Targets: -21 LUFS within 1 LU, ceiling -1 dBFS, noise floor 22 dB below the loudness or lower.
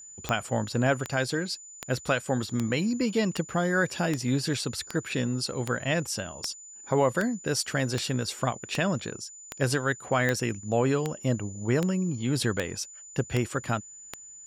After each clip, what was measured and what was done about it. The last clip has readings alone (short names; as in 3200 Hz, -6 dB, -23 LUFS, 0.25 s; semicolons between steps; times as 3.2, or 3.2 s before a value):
clicks 19; steady tone 7000 Hz; tone level -44 dBFS; loudness -28.5 LUFS; peak -10.0 dBFS; loudness target -21.0 LUFS
-> de-click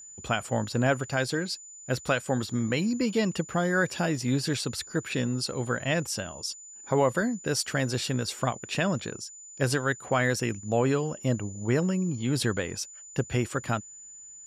clicks 0; steady tone 7000 Hz; tone level -44 dBFS
-> notch 7000 Hz, Q 30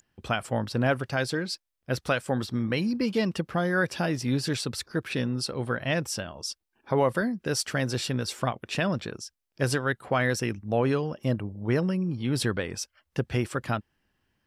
steady tone none; loudness -28.5 LUFS; peak -13.0 dBFS; loudness target -21.0 LUFS
-> gain +7.5 dB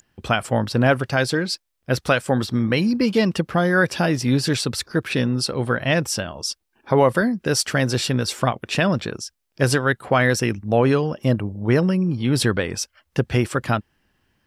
loudness -21.0 LUFS; peak -5.5 dBFS; noise floor -72 dBFS